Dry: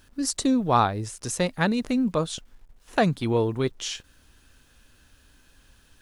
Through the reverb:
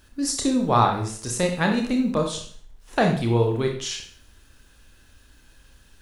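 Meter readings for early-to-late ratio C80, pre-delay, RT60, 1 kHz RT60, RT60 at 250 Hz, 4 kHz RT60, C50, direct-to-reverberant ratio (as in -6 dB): 10.0 dB, 27 ms, 0.50 s, 0.50 s, 0.50 s, 0.50 s, 6.0 dB, 2.0 dB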